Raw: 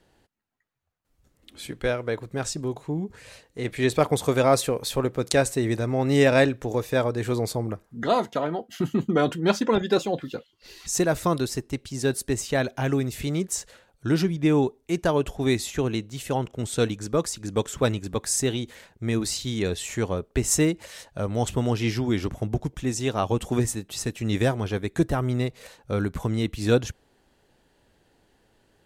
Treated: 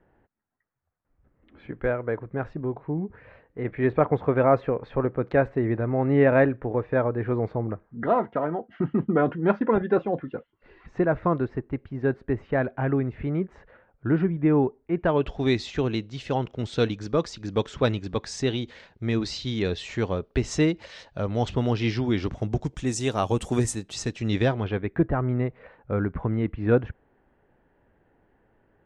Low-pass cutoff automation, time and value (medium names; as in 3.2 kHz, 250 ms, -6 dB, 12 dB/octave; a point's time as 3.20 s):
low-pass 24 dB/octave
14.95 s 1.9 kHz
15.36 s 4.9 kHz
22.18 s 4.9 kHz
23.02 s 10 kHz
23.64 s 10 kHz
24.53 s 4.2 kHz
24.99 s 2 kHz